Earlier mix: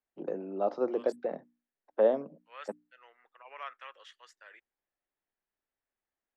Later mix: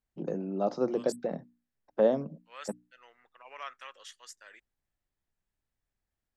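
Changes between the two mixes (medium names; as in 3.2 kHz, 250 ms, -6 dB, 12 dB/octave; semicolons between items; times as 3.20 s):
first voice: add bass shelf 190 Hz -7 dB; master: remove three-band isolator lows -24 dB, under 300 Hz, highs -18 dB, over 3.5 kHz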